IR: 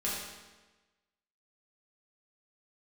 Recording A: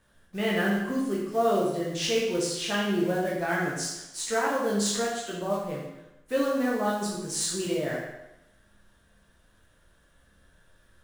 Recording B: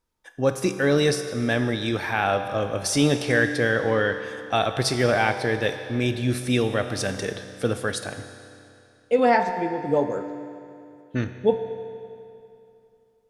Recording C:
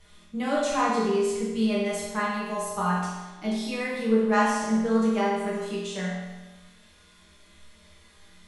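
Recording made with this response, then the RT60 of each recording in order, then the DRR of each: C; 0.90 s, 2.7 s, 1.2 s; -4.5 dB, 7.5 dB, -8.0 dB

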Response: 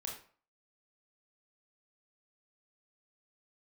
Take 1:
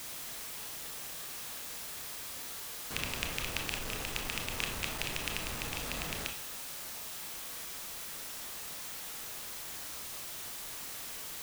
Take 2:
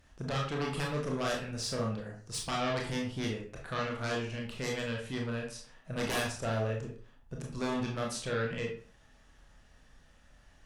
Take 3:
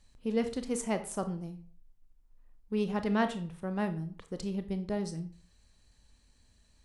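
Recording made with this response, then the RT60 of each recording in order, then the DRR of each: 2; 0.45 s, 0.45 s, 0.45 s; 3.5 dB, -1.0 dB, 8.5 dB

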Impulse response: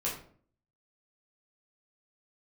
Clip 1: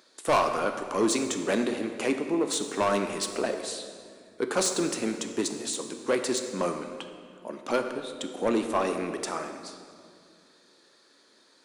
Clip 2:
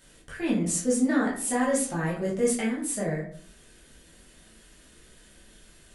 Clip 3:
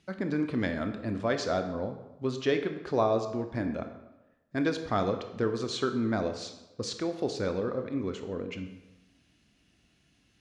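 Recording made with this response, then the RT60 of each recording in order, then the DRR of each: 2; 2.2 s, 0.50 s, 1.0 s; 5.5 dB, -6.0 dB, 6.5 dB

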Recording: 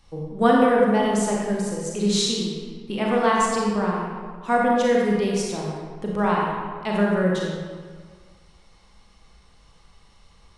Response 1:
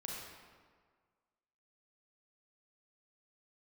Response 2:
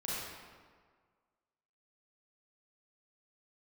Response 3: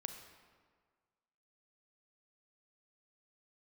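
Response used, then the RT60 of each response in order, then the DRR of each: 1; 1.7 s, 1.7 s, 1.7 s; -3.0 dB, -8.0 dB, 6.0 dB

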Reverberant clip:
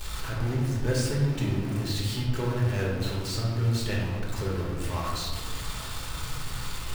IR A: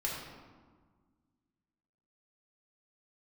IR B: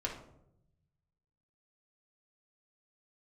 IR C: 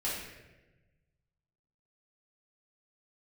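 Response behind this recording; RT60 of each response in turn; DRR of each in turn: A; 1.6 s, 0.80 s, 1.1 s; -4.5 dB, -3.0 dB, -8.0 dB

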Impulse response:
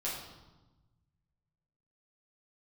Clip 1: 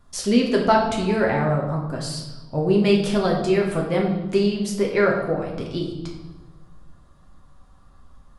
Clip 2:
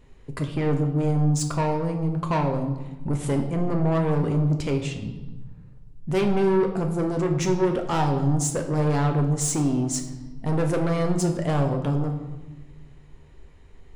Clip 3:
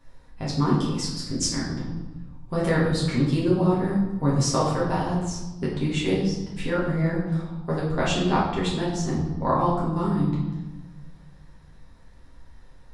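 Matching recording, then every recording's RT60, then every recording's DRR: 3; 1.1 s, 1.1 s, 1.1 s; -1.5 dB, 3.5 dB, -7.5 dB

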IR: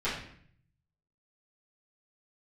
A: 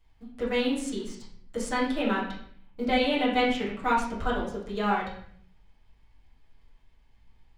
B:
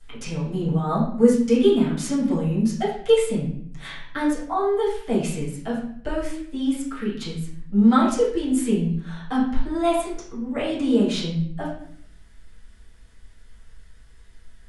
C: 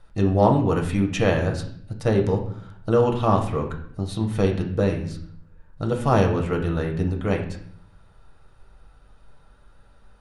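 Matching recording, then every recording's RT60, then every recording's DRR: B; 0.60 s, 0.60 s, 0.60 s; -8.5 dB, -12.5 dB, 1.5 dB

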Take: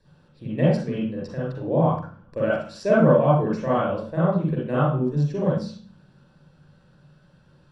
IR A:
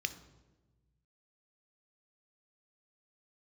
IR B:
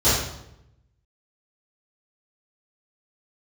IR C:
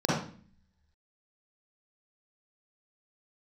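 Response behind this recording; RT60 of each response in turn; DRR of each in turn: C; 1.2 s, 0.80 s, 0.45 s; 11.0 dB, -16.0 dB, -7.0 dB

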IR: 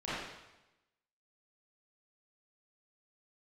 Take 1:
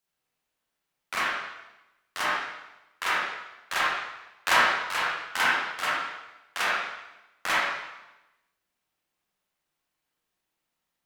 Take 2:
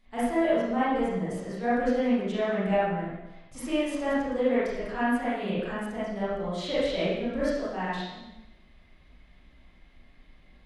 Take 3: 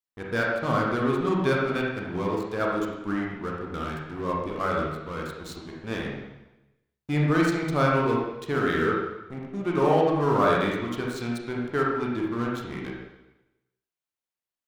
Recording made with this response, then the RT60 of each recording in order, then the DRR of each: 2; 1.0 s, 1.0 s, 1.0 s; -7.0 dB, -12.0 dB, -2.5 dB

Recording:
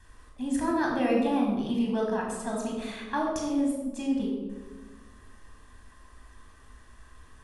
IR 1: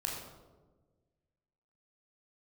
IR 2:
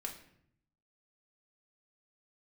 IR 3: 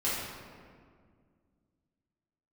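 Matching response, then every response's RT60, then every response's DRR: 1; 1.3 s, 0.70 s, 2.0 s; -2.0 dB, 0.0 dB, -10.5 dB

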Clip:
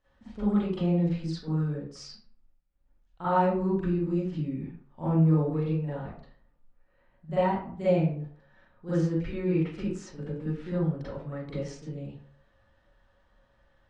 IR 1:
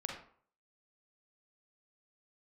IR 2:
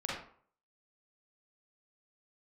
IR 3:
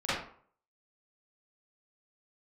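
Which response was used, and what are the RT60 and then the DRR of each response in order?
3; 0.55 s, 0.50 s, 0.50 s; 0.0 dB, -5.5 dB, -14.0 dB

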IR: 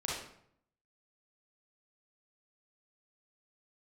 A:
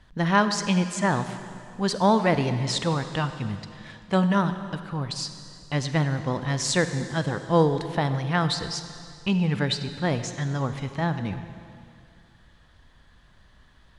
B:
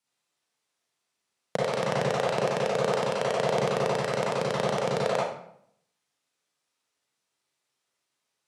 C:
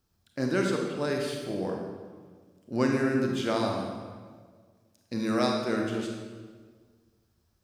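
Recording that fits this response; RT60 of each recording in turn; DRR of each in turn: B; 2.4 s, 0.65 s, 1.6 s; 9.5 dB, -5.5 dB, 1.0 dB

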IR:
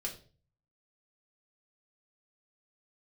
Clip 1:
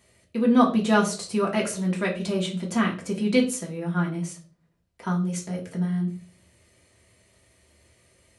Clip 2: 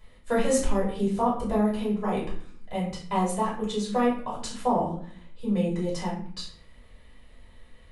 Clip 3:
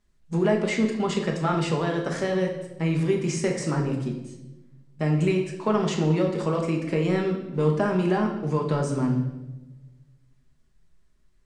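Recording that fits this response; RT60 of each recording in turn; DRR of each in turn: 1; 0.40 s, 0.50 s, 1.0 s; -2.0 dB, -7.5 dB, 0.5 dB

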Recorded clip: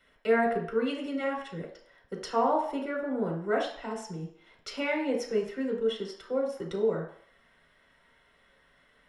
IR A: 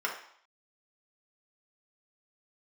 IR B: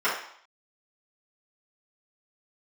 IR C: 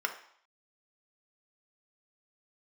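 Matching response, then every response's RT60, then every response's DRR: A; 0.65 s, 0.65 s, 0.65 s; -1.5 dB, -11.5 dB, 4.5 dB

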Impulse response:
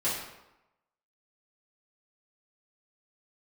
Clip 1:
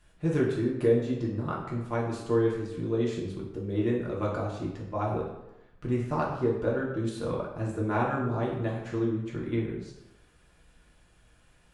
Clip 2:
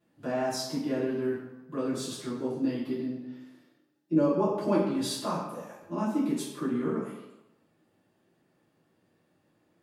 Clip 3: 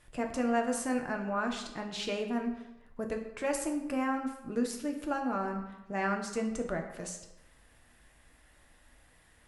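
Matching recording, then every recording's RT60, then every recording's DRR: 2; 0.95 s, 0.95 s, 0.95 s; -4.5 dB, -10.5 dB, 2.5 dB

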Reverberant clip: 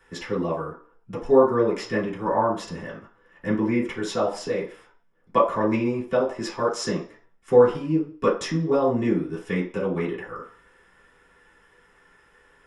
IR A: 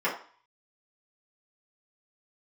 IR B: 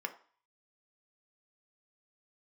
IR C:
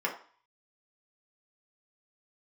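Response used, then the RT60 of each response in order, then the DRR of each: A; 0.45 s, 0.45 s, 0.45 s; -9.0 dB, 5.5 dB, -2.5 dB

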